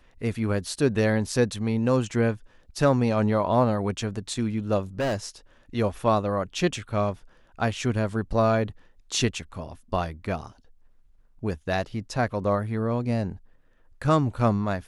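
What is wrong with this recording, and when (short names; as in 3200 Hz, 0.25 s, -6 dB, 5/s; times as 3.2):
4.99–5.26 clipped -22.5 dBFS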